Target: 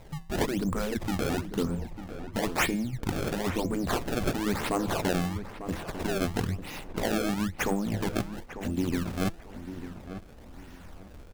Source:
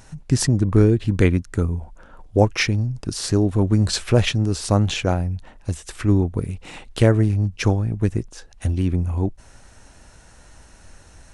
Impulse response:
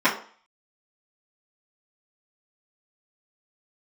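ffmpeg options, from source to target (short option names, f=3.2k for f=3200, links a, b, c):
-filter_complex "[0:a]afftfilt=real='re*lt(hypot(re,im),0.631)':imag='im*lt(hypot(re,im),0.631)':win_size=1024:overlap=0.75,bandreject=f=167:t=h:w=4,bandreject=f=334:t=h:w=4,bandreject=f=501:t=h:w=4,bandreject=f=668:t=h:w=4,bandreject=f=835:t=h:w=4,bandreject=f=1.002k:t=h:w=4,bandreject=f=1.169k:t=h:w=4,bandreject=f=1.336k:t=h:w=4,bandreject=f=1.503k:t=h:w=4,bandreject=f=1.67k:t=h:w=4,bandreject=f=1.837k:t=h:w=4,bandreject=f=2.004k:t=h:w=4,bandreject=f=2.171k:t=h:w=4,bandreject=f=2.338k:t=h:w=4,bandreject=f=2.505k:t=h:w=4,bandreject=f=2.672k:t=h:w=4,bandreject=f=2.839k:t=h:w=4,bandreject=f=3.006k:t=h:w=4,bandreject=f=3.173k:t=h:w=4,bandreject=f=3.34k:t=h:w=4,bandreject=f=3.507k:t=h:w=4,bandreject=f=3.674k:t=h:w=4,bandreject=f=3.841k:t=h:w=4,bandreject=f=4.008k:t=h:w=4,bandreject=f=4.175k:t=h:w=4,bandreject=f=4.342k:t=h:w=4,bandreject=f=4.509k:t=h:w=4,bandreject=f=4.676k:t=h:w=4,adynamicequalizer=threshold=0.00891:dfrequency=220:dqfactor=2:tfrequency=220:tqfactor=2:attack=5:release=100:ratio=0.375:range=1.5:mode=boostabove:tftype=bell,acrusher=samples=26:mix=1:aa=0.000001:lfo=1:lforange=41.6:lforate=1,asoftclip=type=tanh:threshold=-16.5dB,asplit=2[a][b];[b]adelay=897,lowpass=f=1.9k:p=1,volume=-11dB,asplit=2[c][d];[d]adelay=897,lowpass=f=1.9k:p=1,volume=0.29,asplit=2[e][f];[f]adelay=897,lowpass=f=1.9k:p=1,volume=0.29[g];[a][c][e][g]amix=inputs=4:normalize=0,volume=-1.5dB"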